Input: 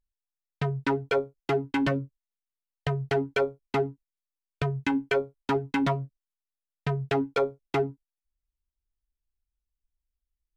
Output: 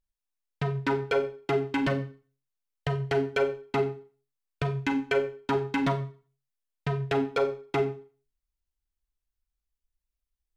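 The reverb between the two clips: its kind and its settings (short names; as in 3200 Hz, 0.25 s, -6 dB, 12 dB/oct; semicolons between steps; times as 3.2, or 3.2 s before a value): Schroeder reverb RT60 0.39 s, combs from 30 ms, DRR 7.5 dB; gain -1 dB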